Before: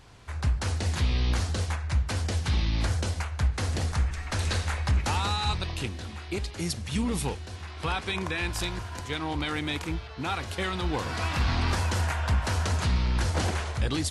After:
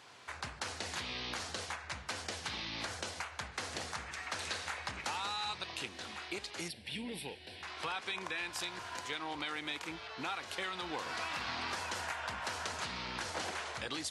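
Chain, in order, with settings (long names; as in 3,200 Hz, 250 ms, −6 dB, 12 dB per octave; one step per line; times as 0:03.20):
meter weighting curve A
downward compressor 2.5 to 1, threshold −39 dBFS, peak gain reduction 9 dB
0:06.68–0:07.63: phaser with its sweep stopped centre 2,900 Hz, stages 4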